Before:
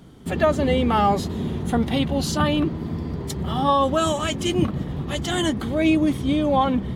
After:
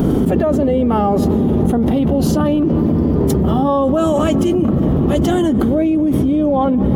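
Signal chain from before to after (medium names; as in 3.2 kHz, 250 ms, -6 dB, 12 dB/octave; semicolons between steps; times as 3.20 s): ten-band graphic EQ 125 Hz -3 dB, 250 Hz +5 dB, 500 Hz +4 dB, 1 kHz -3 dB, 2 kHz -8 dB, 4 kHz -11 dB, 8 kHz -9 dB; tape echo 186 ms, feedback 87%, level -22.5 dB, low-pass 4.8 kHz; level flattener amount 100%; trim -2.5 dB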